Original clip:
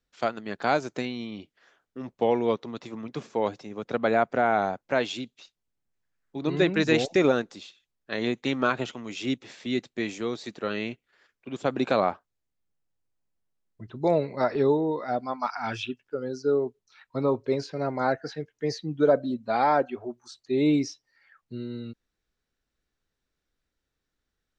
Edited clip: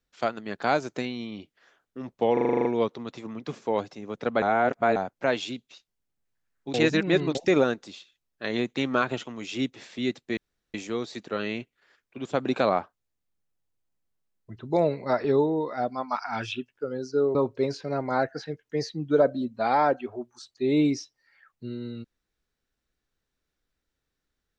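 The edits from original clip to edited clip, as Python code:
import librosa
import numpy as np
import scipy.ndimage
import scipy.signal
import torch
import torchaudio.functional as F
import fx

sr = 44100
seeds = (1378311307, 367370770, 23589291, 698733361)

y = fx.edit(x, sr, fx.stutter(start_s=2.33, slice_s=0.04, count=9),
    fx.reverse_span(start_s=4.1, length_s=0.54),
    fx.reverse_span(start_s=6.42, length_s=0.61),
    fx.insert_room_tone(at_s=10.05, length_s=0.37),
    fx.cut(start_s=16.66, length_s=0.58), tone=tone)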